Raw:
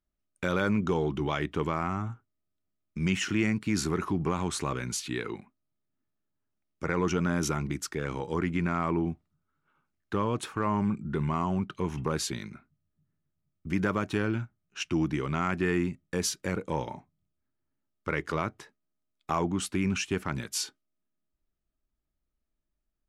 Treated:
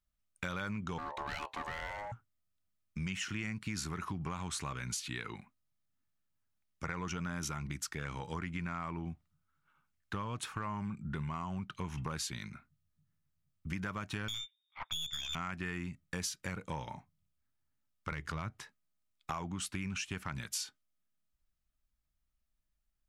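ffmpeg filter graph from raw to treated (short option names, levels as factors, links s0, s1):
-filter_complex "[0:a]asettb=1/sr,asplit=3[s0][s1][s2];[s0]atrim=end=0.984[s3];[s1]atrim=start=0.98:end=2.12,asetpts=PTS-STARTPTS,afade=t=in:d=0.004:c=qsin,afade=t=out:st=1.136:d=0.004:c=qsin,aeval=exprs='clip(val(0),-1,0.0224)':c=same,aeval=exprs='val(0)*sin(2*PI*720*n/s)':c=same[s4];[s2]atrim=start=2.116[s5];[s3][s4]acrossfade=d=0.004:c1=hsin:c2=qsin[s6];[s6][s5]acrossfade=d=0.004:c1=qsin:c2=hsin,asettb=1/sr,asplit=3[s7][s8][s9];[s7]atrim=end=14.284[s10];[s8]atrim=start=14.28:end=15.35,asetpts=PTS-STARTPTS,afade=t=in:d=0.004:c=qsin,afade=t=out:st=1.066:d=0.004:c=qsin,lowpass=f=3100:t=q:w=0.5098,lowpass=f=3100:t=q:w=0.6013,lowpass=f=3100:t=q:w=0.9,lowpass=f=3100:t=q:w=2.563,afreqshift=-3700,aeval=exprs='(tanh(22.4*val(0)+0.8)-tanh(0.8))/22.4':c=same[s11];[s9]atrim=start=15.346[s12];[s10][s11]acrossfade=d=0.004:c1=hsin:c2=qsin[s13];[s13][s12]acrossfade=d=0.004:c1=qsin:c2=hsin,asettb=1/sr,asplit=3[s14][s15][s16];[s14]atrim=end=18.114[s17];[s15]atrim=start=18.11:end=18.52,asetpts=PTS-STARTPTS,afade=t=in:d=0.004:c=qsin,afade=t=out:st=0.406:d=0.004:c=qsin,lowshelf=f=180:g=11.5,acompressor=threshold=0.0316:ratio=2:attack=3.2:release=140:knee=1:detection=peak,asoftclip=type=hard:threshold=0.0944[s18];[s16]atrim=start=18.516[s19];[s17][s18]acrossfade=d=0.004:c1=hsin:c2=qsin[s20];[s20][s19]acrossfade=d=0.004:c1=qsin:c2=hsin,equalizer=f=380:t=o:w=1.6:g=-12.5,acompressor=threshold=0.0158:ratio=6,volume=1.12"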